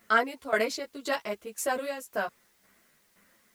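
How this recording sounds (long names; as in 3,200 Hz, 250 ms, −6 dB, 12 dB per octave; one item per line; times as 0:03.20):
tremolo saw down 1.9 Hz, depth 80%
a quantiser's noise floor 12 bits, dither triangular
a shimmering, thickened sound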